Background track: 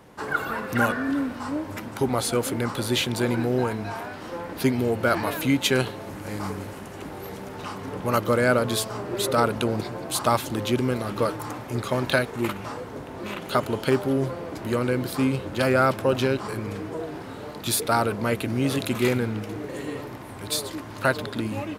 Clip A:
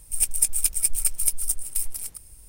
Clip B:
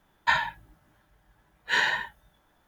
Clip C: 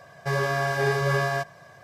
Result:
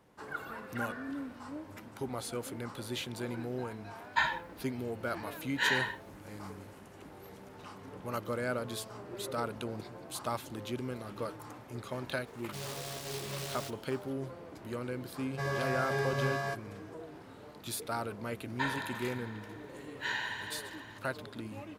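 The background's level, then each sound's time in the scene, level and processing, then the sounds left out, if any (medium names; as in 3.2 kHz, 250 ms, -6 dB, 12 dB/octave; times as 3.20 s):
background track -14 dB
3.89 s: add B -5.5 dB
12.27 s: add C -16.5 dB + delay time shaken by noise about 3.6 kHz, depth 0.2 ms
15.12 s: add C -9 dB
18.32 s: add B -11.5 dB + multi-head delay 82 ms, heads first and second, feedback 74%, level -10 dB
not used: A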